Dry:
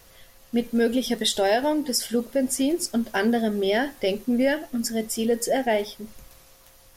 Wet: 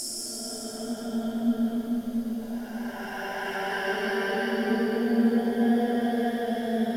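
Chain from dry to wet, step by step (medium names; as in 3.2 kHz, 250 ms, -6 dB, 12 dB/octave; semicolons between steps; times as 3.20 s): Paulstretch 12×, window 0.25 s, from 2.85 s; repeats whose band climbs or falls 431 ms, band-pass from 240 Hz, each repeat 0.7 oct, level -5 dB; trim -5 dB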